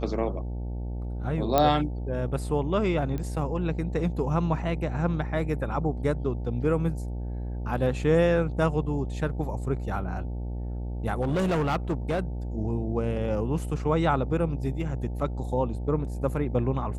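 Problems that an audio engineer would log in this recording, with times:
buzz 60 Hz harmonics 15 -32 dBFS
1.58 pop -8 dBFS
3.18 pop -21 dBFS
11.21–12.2 clipped -22 dBFS

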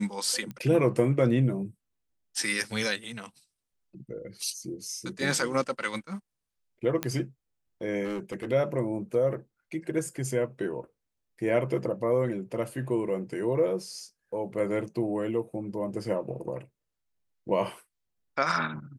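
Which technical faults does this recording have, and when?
0.51 pop -25 dBFS
7.03 pop -13 dBFS
8.04–8.47 clipped -29.5 dBFS

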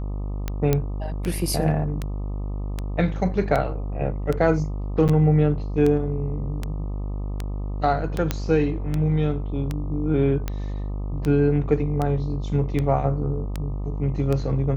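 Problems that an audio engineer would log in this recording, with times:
buzz 50 Hz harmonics 25 -28 dBFS
tick 78 rpm -13 dBFS
0.73 pop -7 dBFS
5.08–5.09 gap 8.3 ms
8.31 pop -8 dBFS

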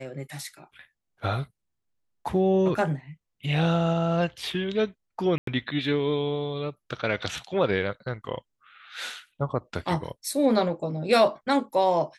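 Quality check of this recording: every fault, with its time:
5.38–5.47 gap 93 ms

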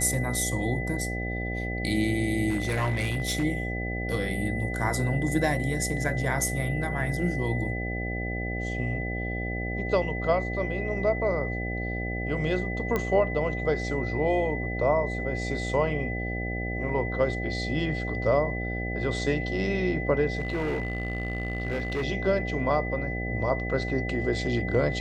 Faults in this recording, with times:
buzz 60 Hz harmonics 13 -32 dBFS
tone 2000 Hz -34 dBFS
2.49–3.43 clipped -22 dBFS
12.96 pop -14 dBFS
20.39–22.05 clipped -24.5 dBFS

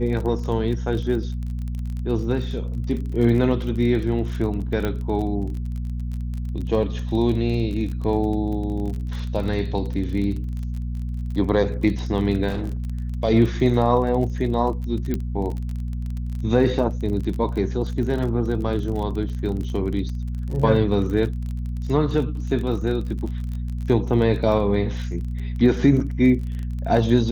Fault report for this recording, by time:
crackle 29/s -29 dBFS
hum 60 Hz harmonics 4 -27 dBFS
4.85 pop -13 dBFS
12.48–12.84 clipped -22 dBFS
15.14 pop -13 dBFS
19.29 gap 2.2 ms

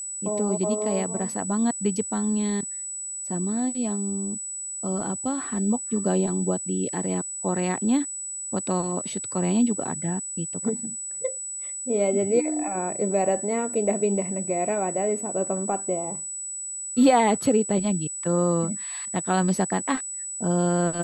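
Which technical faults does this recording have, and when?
tone 7900 Hz -31 dBFS

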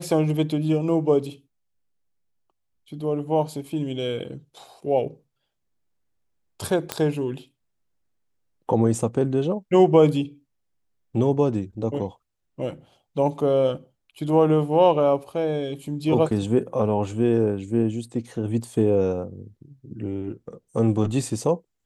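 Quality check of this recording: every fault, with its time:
6.92 pop -8 dBFS

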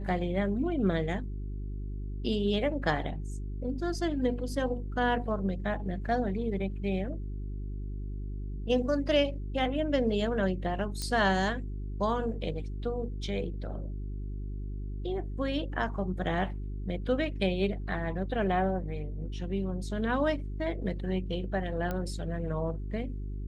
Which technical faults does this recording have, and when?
hum 50 Hz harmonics 8 -36 dBFS
11.02 pop -20 dBFS
21.91 pop -20 dBFS

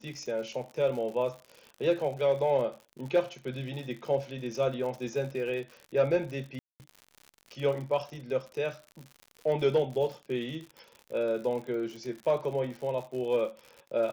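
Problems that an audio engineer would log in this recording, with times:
crackle 86/s -38 dBFS
6.59–6.8 gap 0.209 s

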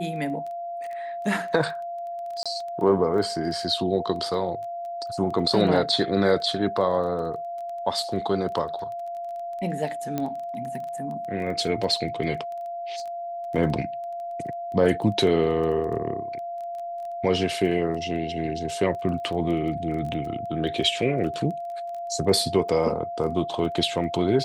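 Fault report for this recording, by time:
crackle 13/s -33 dBFS
tone 690 Hz -30 dBFS
2.43–2.46 gap 26 ms
10.18 pop -14 dBFS

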